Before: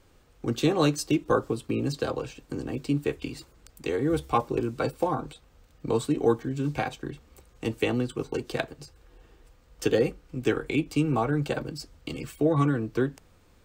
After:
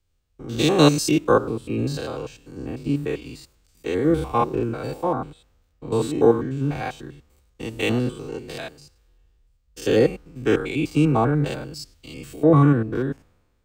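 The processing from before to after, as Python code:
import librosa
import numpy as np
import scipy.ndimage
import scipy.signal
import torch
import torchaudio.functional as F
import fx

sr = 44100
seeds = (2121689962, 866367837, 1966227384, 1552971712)

y = fx.spec_steps(x, sr, hold_ms=100)
y = fx.band_widen(y, sr, depth_pct=70)
y = y * librosa.db_to_amplitude(6.5)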